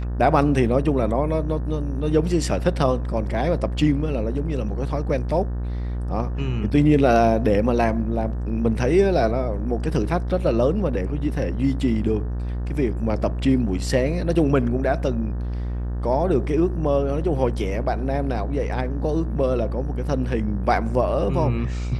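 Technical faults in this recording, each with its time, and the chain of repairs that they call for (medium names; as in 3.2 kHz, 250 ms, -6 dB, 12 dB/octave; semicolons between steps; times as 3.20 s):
buzz 60 Hz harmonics 31 -26 dBFS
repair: de-hum 60 Hz, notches 31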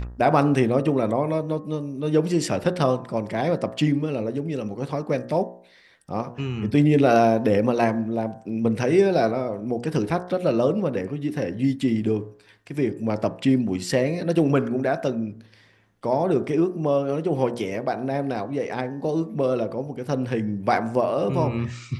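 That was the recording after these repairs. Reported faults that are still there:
nothing left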